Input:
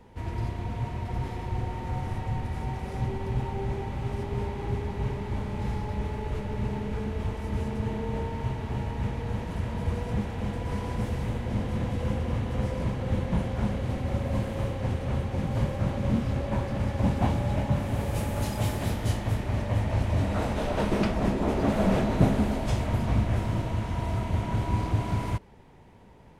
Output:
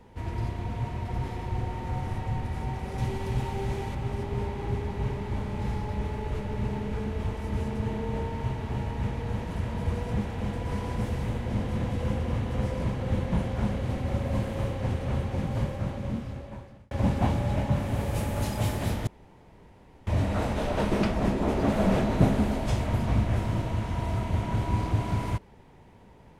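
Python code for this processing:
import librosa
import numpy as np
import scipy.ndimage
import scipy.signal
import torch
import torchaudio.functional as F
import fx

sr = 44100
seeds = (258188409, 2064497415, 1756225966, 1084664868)

y = fx.high_shelf(x, sr, hz=3000.0, db=9.0, at=(2.98, 3.95))
y = fx.edit(y, sr, fx.fade_out_span(start_s=15.32, length_s=1.59),
    fx.room_tone_fill(start_s=19.07, length_s=1.0), tone=tone)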